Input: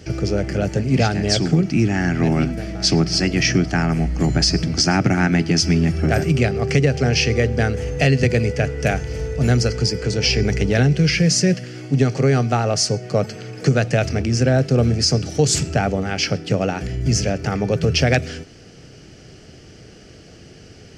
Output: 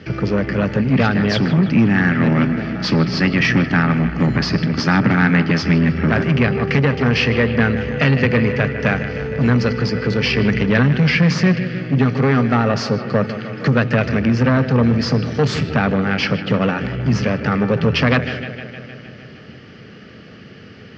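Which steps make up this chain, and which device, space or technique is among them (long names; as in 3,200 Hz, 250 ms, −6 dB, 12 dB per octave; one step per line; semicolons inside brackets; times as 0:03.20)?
analogue delay pedal into a guitar amplifier (bucket-brigade delay 154 ms, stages 4,096, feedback 69%, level −14 dB; tube saturation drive 14 dB, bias 0.4; loudspeaker in its box 110–3,900 Hz, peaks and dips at 220 Hz +6 dB, 340 Hz −5 dB, 710 Hz −6 dB, 1,200 Hz +6 dB, 1,800 Hz +5 dB)
level +5.5 dB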